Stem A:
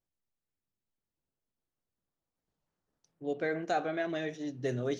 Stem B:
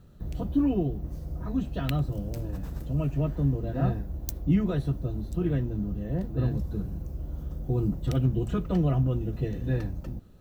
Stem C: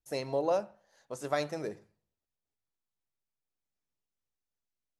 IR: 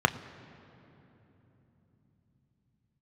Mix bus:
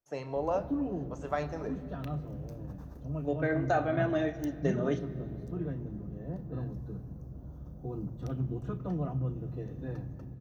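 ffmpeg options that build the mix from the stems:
-filter_complex "[0:a]aecho=1:1:3.3:0.4,agate=range=-9dB:threshold=-35dB:ratio=16:detection=peak,volume=2.5dB,asplit=3[link_01][link_02][link_03];[link_02]volume=-15dB[link_04];[1:a]adelay=150,volume=-14dB,asplit=2[link_05][link_06];[link_06]volume=-10.5dB[link_07];[2:a]volume=-12dB,asplit=2[link_08][link_09];[link_09]volume=-4.5dB[link_10];[link_03]apad=whole_len=465491[link_11];[link_05][link_11]sidechaincompress=threshold=-31dB:ratio=8:attack=16:release=245[link_12];[link_01][link_08]amix=inputs=2:normalize=0,tremolo=f=1.9:d=0.8,acompressor=threshold=-39dB:ratio=2.5,volume=0dB[link_13];[3:a]atrim=start_sample=2205[link_14];[link_04][link_07][link_10]amix=inputs=3:normalize=0[link_15];[link_15][link_14]afir=irnorm=-1:irlink=0[link_16];[link_12][link_13][link_16]amix=inputs=3:normalize=0"

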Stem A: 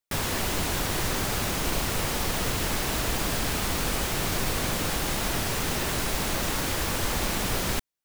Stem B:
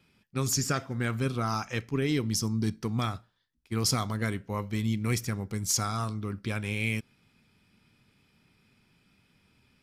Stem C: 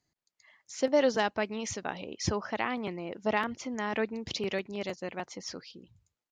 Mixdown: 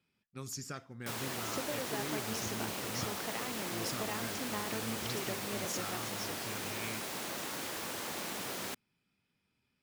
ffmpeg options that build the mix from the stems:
ffmpeg -i stem1.wav -i stem2.wav -i stem3.wav -filter_complex "[0:a]highpass=210,adelay=950,volume=-10.5dB[link_01];[1:a]lowshelf=frequency=71:gain=-10,volume=-13.5dB[link_02];[2:a]acompressor=threshold=-34dB:ratio=6,adelay=750,volume=-4dB[link_03];[link_01][link_02][link_03]amix=inputs=3:normalize=0" out.wav

